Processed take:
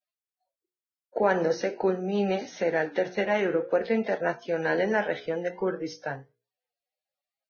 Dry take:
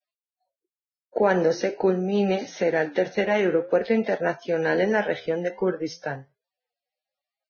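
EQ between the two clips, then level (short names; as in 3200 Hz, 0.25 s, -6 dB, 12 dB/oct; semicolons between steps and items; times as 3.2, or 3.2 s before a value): notches 60/120/180/240/300/360/420/480 Hz; dynamic EQ 1100 Hz, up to +3 dB, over -38 dBFS, Q 0.91; -4.0 dB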